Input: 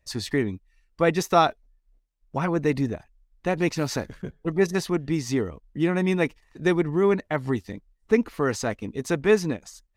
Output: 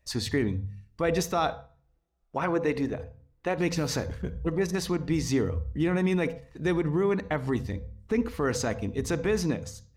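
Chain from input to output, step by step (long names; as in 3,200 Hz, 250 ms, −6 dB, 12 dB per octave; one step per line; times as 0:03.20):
0:01.49–0:03.58: bass and treble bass −10 dB, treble −5 dB
brickwall limiter −17 dBFS, peak gain reduction 10 dB
on a send: convolution reverb RT60 0.40 s, pre-delay 32 ms, DRR 13 dB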